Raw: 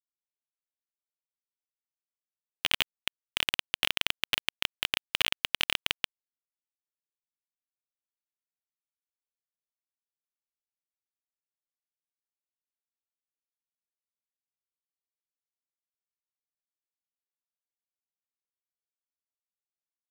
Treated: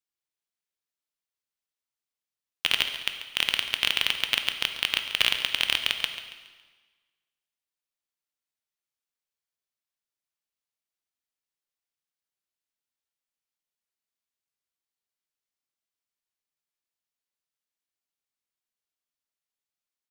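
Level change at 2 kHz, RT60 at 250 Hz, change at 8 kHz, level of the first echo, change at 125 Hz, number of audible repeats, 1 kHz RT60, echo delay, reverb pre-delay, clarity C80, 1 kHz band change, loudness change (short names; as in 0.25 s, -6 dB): +4.5 dB, 1.4 s, +3.0 dB, -13.5 dB, +1.0 dB, 3, 1.4 s, 0.139 s, 6 ms, 8.5 dB, +2.5 dB, +4.5 dB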